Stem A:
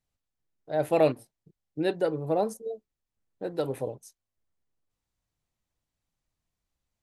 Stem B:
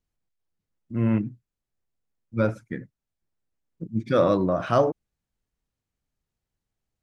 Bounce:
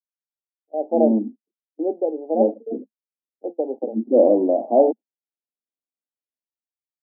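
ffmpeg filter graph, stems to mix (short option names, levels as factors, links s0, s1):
-filter_complex "[0:a]volume=0.422[s0];[1:a]volume=0.531[s1];[s0][s1]amix=inputs=2:normalize=0,agate=range=0.0562:threshold=0.00891:ratio=16:detection=peak,dynaudnorm=f=190:g=7:m=5.01,asuperpass=centerf=430:order=20:qfactor=0.69"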